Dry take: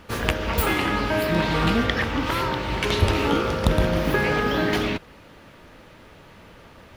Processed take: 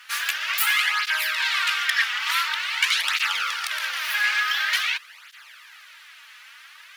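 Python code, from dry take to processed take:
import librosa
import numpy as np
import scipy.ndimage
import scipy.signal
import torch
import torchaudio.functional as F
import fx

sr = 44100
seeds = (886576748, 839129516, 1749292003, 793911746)

p1 = fx.fold_sine(x, sr, drive_db=14, ceiling_db=-2.0)
p2 = x + (p1 * 10.0 ** (-9.5 / 20.0))
p3 = scipy.signal.sosfilt(scipy.signal.butter(4, 1500.0, 'highpass', fs=sr, output='sos'), p2)
y = fx.flanger_cancel(p3, sr, hz=0.47, depth_ms=4.5)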